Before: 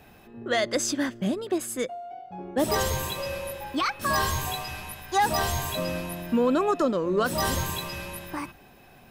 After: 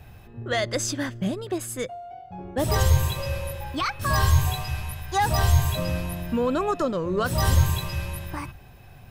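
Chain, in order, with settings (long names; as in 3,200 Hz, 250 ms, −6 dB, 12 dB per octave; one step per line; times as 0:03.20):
low shelf with overshoot 160 Hz +11.5 dB, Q 1.5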